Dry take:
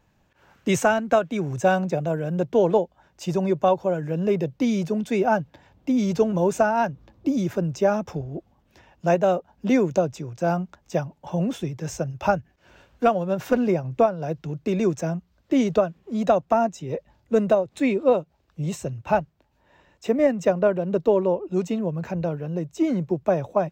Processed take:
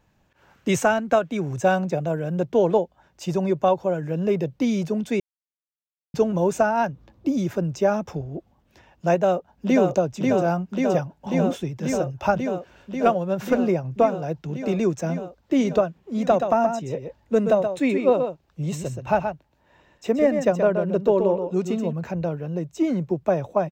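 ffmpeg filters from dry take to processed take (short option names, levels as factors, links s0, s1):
-filter_complex "[0:a]asplit=2[s0][s1];[s1]afade=t=in:st=9.15:d=0.01,afade=t=out:st=9.88:d=0.01,aecho=0:1:540|1080|1620|2160|2700|3240|3780|4320|4860|5400|5940|6480:0.707946|0.601754|0.511491|0.434767|0.369552|0.314119|0.267001|0.226951|0.192909|0.163972|0.139376|0.11847[s2];[s0][s2]amix=inputs=2:normalize=0,asettb=1/sr,asplit=3[s3][s4][s5];[s3]atrim=end=16.184[s6];[s4]atrim=start=16.18:end=21.93,asetpts=PTS-STARTPTS,afade=t=in:d=0.004:c=qsin,afade=t=out:st=5.746:d=0.004:c=qsin,aecho=1:1:126:0.447,atrim=end_sample=253575[s7];[s5]atrim=start=21.926[s8];[s6][s7]acrossfade=d=0.004:c1=hsin:c2=qsin[s9];[s9][s8]acrossfade=d=0.004:c1=qsin:c2=hsin,asplit=3[s10][s11][s12];[s10]atrim=end=5.2,asetpts=PTS-STARTPTS,afade=t=out:st=5.196:d=0.004:c=hsin[s13];[s11]atrim=start=5.2:end=6.14,asetpts=PTS-STARTPTS,volume=0[s14];[s12]atrim=start=6.14,asetpts=PTS-STARTPTS,afade=t=in:d=0.004:c=hsin[s15];[s13][s14][s15]concat=n=3:v=0:a=1"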